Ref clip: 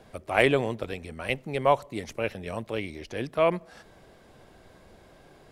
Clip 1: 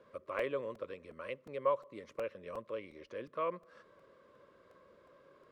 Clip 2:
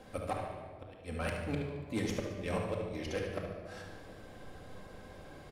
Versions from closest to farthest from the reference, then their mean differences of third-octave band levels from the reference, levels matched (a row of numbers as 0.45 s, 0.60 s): 1, 2; 5.0 dB, 11.0 dB